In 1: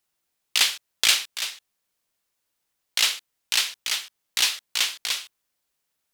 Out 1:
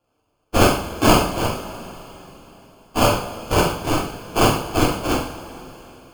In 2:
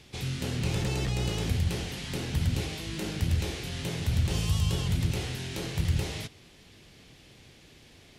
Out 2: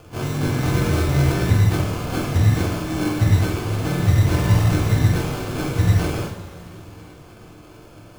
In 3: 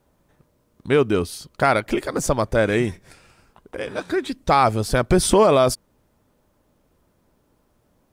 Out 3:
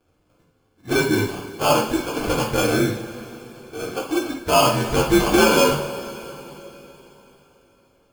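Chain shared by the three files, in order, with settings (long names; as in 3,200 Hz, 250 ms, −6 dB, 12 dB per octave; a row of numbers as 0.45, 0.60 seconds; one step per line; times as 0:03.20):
partials spread apart or drawn together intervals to 84%
decimation without filtering 23×
coupled-rooms reverb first 0.47 s, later 3.8 s, from −18 dB, DRR −1.5 dB
loudness normalisation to −20 LKFS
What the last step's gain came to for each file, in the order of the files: +5.5, +8.5, −2.0 decibels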